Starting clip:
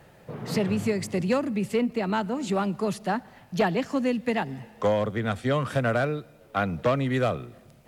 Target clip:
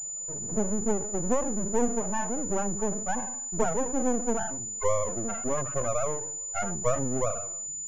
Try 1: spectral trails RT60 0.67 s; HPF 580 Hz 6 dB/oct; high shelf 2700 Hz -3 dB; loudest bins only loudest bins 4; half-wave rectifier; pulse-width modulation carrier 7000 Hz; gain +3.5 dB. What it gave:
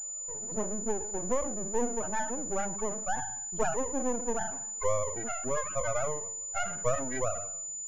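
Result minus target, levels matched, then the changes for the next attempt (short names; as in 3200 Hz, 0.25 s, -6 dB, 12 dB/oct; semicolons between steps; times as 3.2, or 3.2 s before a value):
250 Hz band -4.0 dB
change: HPF 180 Hz 6 dB/oct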